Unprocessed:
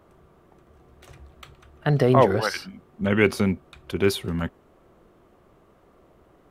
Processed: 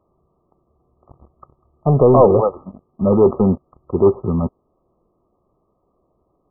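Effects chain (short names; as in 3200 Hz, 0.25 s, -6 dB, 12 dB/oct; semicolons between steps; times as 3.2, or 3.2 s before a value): sample leveller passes 3; dynamic EQ 500 Hz, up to +5 dB, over -22 dBFS, Q 1.3; brick-wall FIR low-pass 1300 Hz; gain -3 dB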